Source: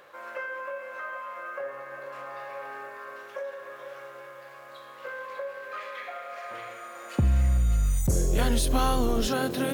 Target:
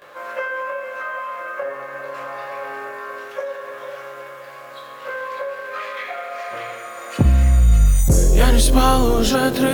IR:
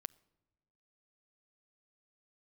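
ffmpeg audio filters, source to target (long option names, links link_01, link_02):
-filter_complex "[0:a]asplit=2[link_01][link_02];[1:a]atrim=start_sample=2205,adelay=19[link_03];[link_02][link_03]afir=irnorm=-1:irlink=0,volume=14.5dB[link_04];[link_01][link_04]amix=inputs=2:normalize=0,volume=-1dB"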